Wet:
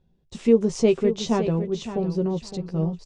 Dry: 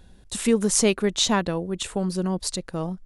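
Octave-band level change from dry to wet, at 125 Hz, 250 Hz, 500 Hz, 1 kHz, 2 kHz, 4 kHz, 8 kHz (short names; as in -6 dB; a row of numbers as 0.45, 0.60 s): +3.0, +1.5, +3.5, -4.0, -9.0, -10.0, -14.5 dB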